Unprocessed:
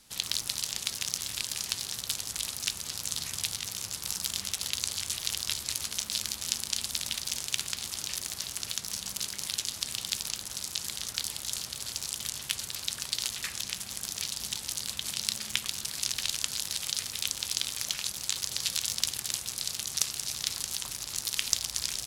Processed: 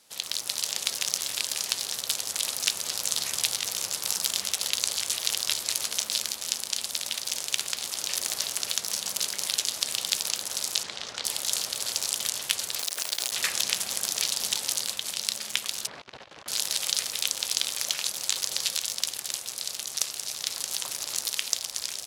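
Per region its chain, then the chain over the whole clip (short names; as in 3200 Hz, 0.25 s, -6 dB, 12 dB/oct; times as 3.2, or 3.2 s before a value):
10.83–11.25 self-modulated delay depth 0.065 ms + air absorption 130 m
12.79–13.32 high shelf 3900 Hz +4 dB + compressor 5:1, threshold -30 dBFS + requantised 6-bit, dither none
15.87–16.48 negative-ratio compressor -37 dBFS, ratio -0.5 + LPF 1500 Hz
whole clip: HPF 430 Hz 6 dB/oct; bell 550 Hz +7 dB 1.1 oct; AGC; gain -1 dB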